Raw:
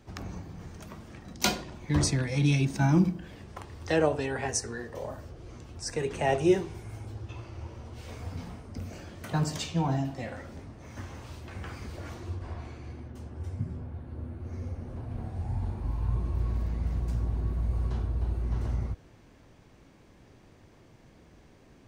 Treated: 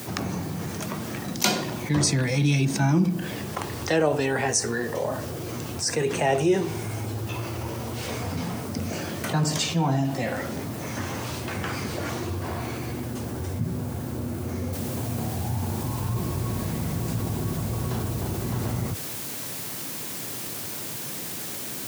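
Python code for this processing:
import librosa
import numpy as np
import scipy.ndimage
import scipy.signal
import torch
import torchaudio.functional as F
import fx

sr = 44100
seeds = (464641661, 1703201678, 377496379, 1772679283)

y = fx.noise_floor_step(x, sr, seeds[0], at_s=14.73, before_db=-63, after_db=-54, tilt_db=0.0)
y = scipy.signal.sosfilt(scipy.signal.butter(4, 110.0, 'highpass', fs=sr, output='sos'), y)
y = fx.high_shelf(y, sr, hz=5300.0, db=4.0)
y = fx.env_flatten(y, sr, amount_pct=50)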